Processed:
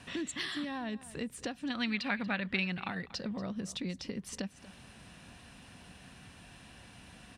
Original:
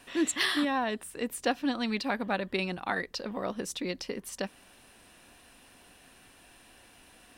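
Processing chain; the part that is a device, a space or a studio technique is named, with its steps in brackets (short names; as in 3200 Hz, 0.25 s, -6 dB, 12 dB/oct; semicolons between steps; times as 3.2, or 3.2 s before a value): jukebox (LPF 7900 Hz 12 dB/oct; resonant low shelf 240 Hz +9 dB, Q 1.5; compressor 5:1, threshold -37 dBFS, peak gain reduction 13.5 dB); HPF 56 Hz; 1.7–2.88 bell 2100 Hz +13 dB 2.2 oct; echo 0.236 s -17.5 dB; dynamic EQ 960 Hz, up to -4 dB, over -52 dBFS, Q 1.1; gain +2 dB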